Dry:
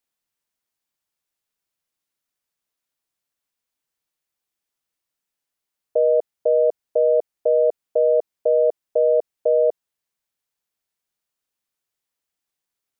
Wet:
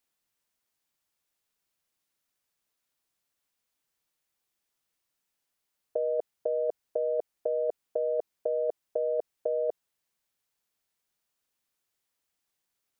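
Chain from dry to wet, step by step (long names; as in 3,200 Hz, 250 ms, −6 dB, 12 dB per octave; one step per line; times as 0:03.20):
compressor whose output falls as the input rises −23 dBFS, ratio −1
level −5 dB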